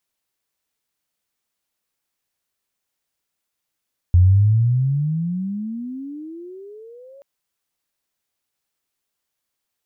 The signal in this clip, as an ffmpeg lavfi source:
-f lavfi -i "aevalsrc='pow(10,(-8-33*t/3.08)/20)*sin(2*PI*86.3*3.08/(32.5*log(2)/12)*(exp(32.5*log(2)/12*t/3.08)-1))':d=3.08:s=44100"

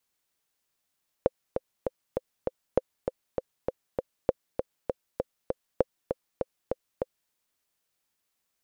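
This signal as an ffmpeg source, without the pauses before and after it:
-f lavfi -i "aevalsrc='pow(10,(-7.5-6.5*gte(mod(t,5*60/198),60/198))/20)*sin(2*PI*518*mod(t,60/198))*exp(-6.91*mod(t,60/198)/0.03)':d=6.06:s=44100"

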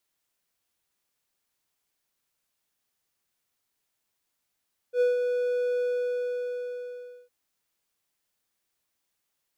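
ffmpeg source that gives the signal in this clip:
-f lavfi -i "aevalsrc='0.15*(1-4*abs(mod(492*t+0.25,1)-0.5))':d=2.36:s=44100,afade=t=in:d=0.077,afade=t=out:st=0.077:d=0.156:silence=0.531,afade=t=out:st=0.87:d=1.49"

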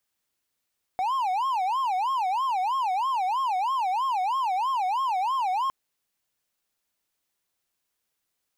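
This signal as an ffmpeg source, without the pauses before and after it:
-f lavfi -i "aevalsrc='0.0891*(1-4*abs(mod((906*t-174/(2*PI*3.1)*sin(2*PI*3.1*t))+0.25,1)-0.5))':d=4.71:s=44100"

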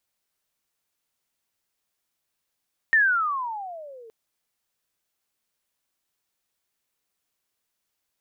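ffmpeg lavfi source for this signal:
-f lavfi -i "aevalsrc='pow(10,(-14-29*t/1.17)/20)*sin(2*PI*1850*1.17/(-25*log(2)/12)*(exp(-25*log(2)/12*t/1.17)-1))':d=1.17:s=44100"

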